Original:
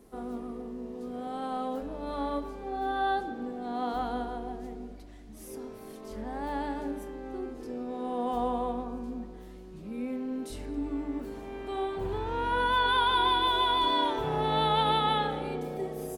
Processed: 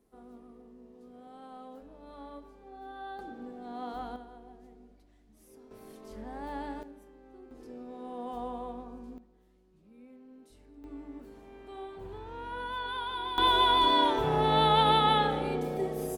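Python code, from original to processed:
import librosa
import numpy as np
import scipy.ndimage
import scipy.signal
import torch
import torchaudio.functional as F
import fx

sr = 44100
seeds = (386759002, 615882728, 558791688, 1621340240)

y = fx.gain(x, sr, db=fx.steps((0.0, -14.0), (3.19, -7.0), (4.16, -14.0), (5.71, -5.0), (6.83, -15.0), (7.51, -8.0), (9.18, -19.0), (10.84, -10.5), (13.38, 2.5)))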